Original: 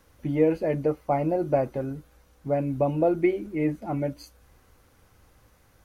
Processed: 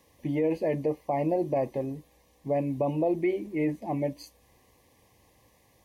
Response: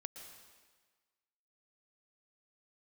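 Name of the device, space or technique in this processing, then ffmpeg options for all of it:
PA system with an anti-feedback notch: -af "highpass=f=160:p=1,asuperstop=centerf=1400:order=8:qfactor=2.6,alimiter=limit=-18.5dB:level=0:latency=1:release=30"

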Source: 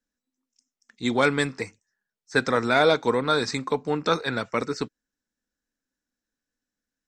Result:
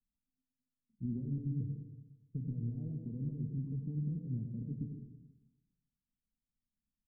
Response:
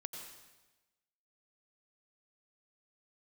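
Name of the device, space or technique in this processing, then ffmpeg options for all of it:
club heard from the street: -filter_complex "[0:a]alimiter=limit=-18.5dB:level=0:latency=1:release=46,lowpass=f=180:w=0.5412,lowpass=f=180:w=1.3066[a];[1:a]atrim=start_sample=2205[b];[a][b]afir=irnorm=-1:irlink=0,asplit=3[c][d][e];[c]afade=t=out:st=1.49:d=0.02[f];[d]aecho=1:1:6.8:0.58,afade=t=in:st=1.49:d=0.02,afade=t=out:st=2.89:d=0.02[g];[e]afade=t=in:st=2.89:d=0.02[h];[f][g][h]amix=inputs=3:normalize=0,volume=5.5dB"

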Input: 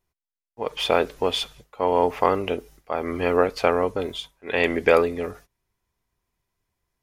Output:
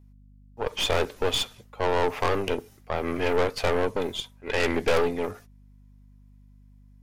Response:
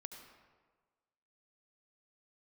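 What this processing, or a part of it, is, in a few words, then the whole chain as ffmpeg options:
valve amplifier with mains hum: -af "aeval=exprs='(tanh(14.1*val(0)+0.75)-tanh(0.75))/14.1':c=same,aeval=exprs='val(0)+0.00158*(sin(2*PI*50*n/s)+sin(2*PI*2*50*n/s)/2+sin(2*PI*3*50*n/s)/3+sin(2*PI*4*50*n/s)/4+sin(2*PI*5*50*n/s)/5)':c=same,volume=4.5dB"

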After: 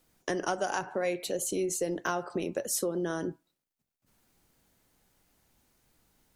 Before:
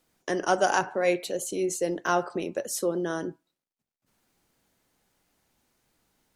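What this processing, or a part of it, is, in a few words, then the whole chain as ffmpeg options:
ASMR close-microphone chain: -af "lowshelf=f=130:g=7.5,acompressor=threshold=-27dB:ratio=6,highshelf=f=10k:g=5.5"

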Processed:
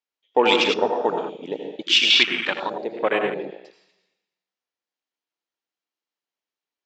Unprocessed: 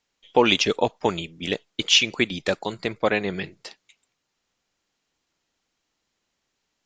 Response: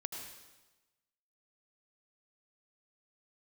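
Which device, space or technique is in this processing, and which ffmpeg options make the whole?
supermarket ceiling speaker: -filter_complex "[0:a]highpass=310,lowpass=5.7k[a];[1:a]atrim=start_sample=2205[b];[a][b]afir=irnorm=-1:irlink=0,afwtdn=0.0355,asettb=1/sr,asplit=3[c][d][e];[c]atrim=end=2.104[f];[d]atrim=start=2.1:end=2.7,asetpts=PTS-STARTPTS,afade=t=in:d=0.004:c=qsin,afade=t=out:st=0.596:d=0.004:c=qsin,equalizer=f=500:t=o:w=1:g=-10,equalizer=f=1k:t=o:w=1:g=8,equalizer=f=4k:t=o:w=1:g=11[g];[e]atrim=start=2.696[h];[f][g]acrossfade=d=0.004:c1=hsin:c2=qsin[i];[i][h]acrossfade=d=0.004:c1=qsin:c2=hsin,volume=3dB"

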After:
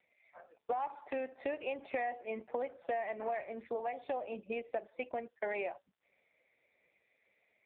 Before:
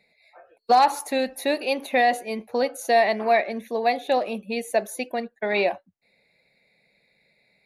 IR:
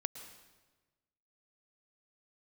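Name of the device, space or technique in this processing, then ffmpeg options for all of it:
voicemail: -af "highpass=330,lowpass=2.7k,acompressor=threshold=-31dB:ratio=6,volume=-2.5dB" -ar 8000 -c:a libopencore_amrnb -b:a 5900

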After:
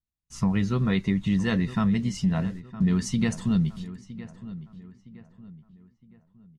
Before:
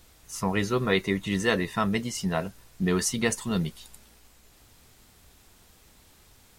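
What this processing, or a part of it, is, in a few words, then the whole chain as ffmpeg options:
jukebox: -filter_complex "[0:a]agate=range=-42dB:threshold=-44dB:ratio=16:detection=peak,lowpass=6.4k,lowshelf=f=280:t=q:w=1.5:g=10,acompressor=threshold=-19dB:ratio=3,asplit=2[a][b];[b]adelay=963,lowpass=f=2.5k:p=1,volume=-15dB,asplit=2[c][d];[d]adelay=963,lowpass=f=2.5k:p=1,volume=0.4,asplit=2[e][f];[f]adelay=963,lowpass=f=2.5k:p=1,volume=0.4,asplit=2[g][h];[h]adelay=963,lowpass=f=2.5k:p=1,volume=0.4[i];[a][c][e][g][i]amix=inputs=5:normalize=0,volume=-2dB"

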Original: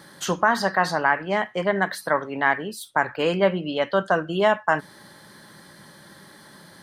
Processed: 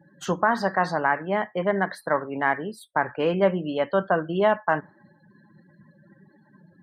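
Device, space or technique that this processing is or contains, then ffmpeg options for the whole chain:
exciter from parts: -filter_complex "[0:a]afftdn=nr=36:nf=-41,asplit=2[a][b];[b]highpass=f=2.9k:p=1,asoftclip=type=tanh:threshold=-31dB,highpass=4.6k,volume=-13dB[c];[a][c]amix=inputs=2:normalize=0,highshelf=f=2k:g=-9"

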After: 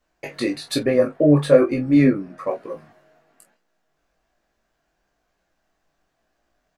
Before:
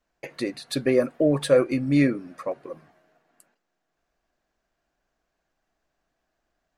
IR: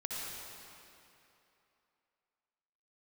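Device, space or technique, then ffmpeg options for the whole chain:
double-tracked vocal: -filter_complex "[0:a]asplit=2[a][b];[b]adelay=27,volume=-8.5dB[c];[a][c]amix=inputs=2:normalize=0,flanger=delay=17:depth=4:speed=1.1,asettb=1/sr,asplit=3[d][e][f];[d]atrim=end=0.834[g];[e]atrim=start=0.83:end=2.47,asetpts=PTS-STARTPTS,afade=t=in:d=0.004:c=qsin,afade=t=out:st=1.636:d=0.004:c=qsin,highshelf=f=2.4k:g=-10[h];[f]atrim=start=2.466[i];[g][h]acrossfade=d=0.004:c1=hsin:c2=qsin[j];[j][i]acrossfade=d=0.004:c1=qsin:c2=hsin,volume=8dB"

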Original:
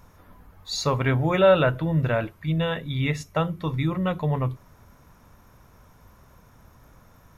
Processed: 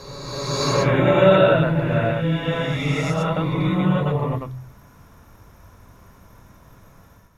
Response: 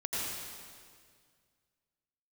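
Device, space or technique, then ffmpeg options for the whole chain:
reverse reverb: -filter_complex "[0:a]areverse[a];[1:a]atrim=start_sample=2205[b];[a][b]afir=irnorm=-1:irlink=0,areverse,bandreject=f=128.1:t=h:w=4,bandreject=f=256.2:t=h:w=4,volume=-1dB"

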